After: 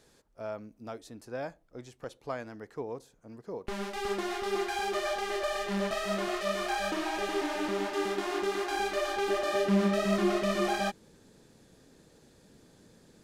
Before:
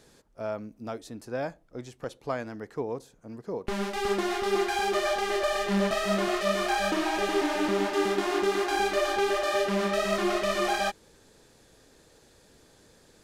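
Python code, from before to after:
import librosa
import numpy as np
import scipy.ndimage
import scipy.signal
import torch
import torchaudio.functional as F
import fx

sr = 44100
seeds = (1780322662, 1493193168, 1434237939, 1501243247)

y = fx.peak_eq(x, sr, hz=190.0, db=fx.steps((0.0, -2.0), (9.28, 10.0)), octaves=1.7)
y = y * 10.0 ** (-4.5 / 20.0)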